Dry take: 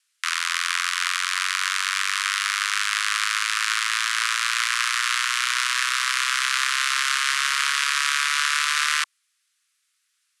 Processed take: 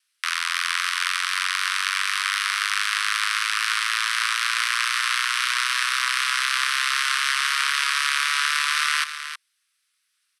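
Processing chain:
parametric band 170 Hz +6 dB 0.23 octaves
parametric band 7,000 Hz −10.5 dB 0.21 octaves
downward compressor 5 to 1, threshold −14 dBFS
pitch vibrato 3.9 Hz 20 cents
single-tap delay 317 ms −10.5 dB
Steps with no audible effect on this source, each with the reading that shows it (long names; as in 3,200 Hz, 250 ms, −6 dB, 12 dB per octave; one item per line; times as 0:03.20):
parametric band 170 Hz: nothing at its input below 850 Hz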